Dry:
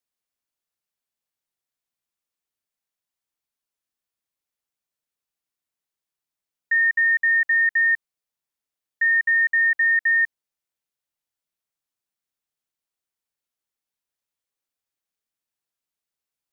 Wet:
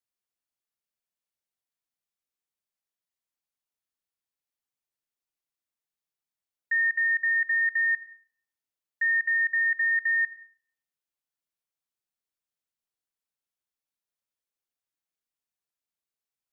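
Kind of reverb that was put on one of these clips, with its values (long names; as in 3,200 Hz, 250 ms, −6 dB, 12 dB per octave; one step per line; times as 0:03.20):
comb and all-pass reverb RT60 0.9 s, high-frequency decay 0.3×, pre-delay 55 ms, DRR 16 dB
level −5.5 dB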